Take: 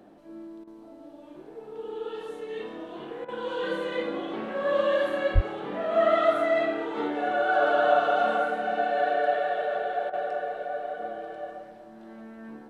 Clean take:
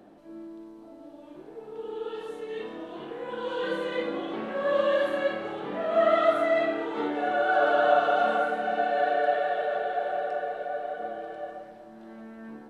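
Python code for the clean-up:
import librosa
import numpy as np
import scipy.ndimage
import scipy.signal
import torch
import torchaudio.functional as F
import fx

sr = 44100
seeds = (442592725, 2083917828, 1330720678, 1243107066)

y = fx.highpass(x, sr, hz=140.0, slope=24, at=(5.34, 5.46), fade=0.02)
y = fx.fix_interpolate(y, sr, at_s=(0.64, 3.25, 10.1), length_ms=32.0)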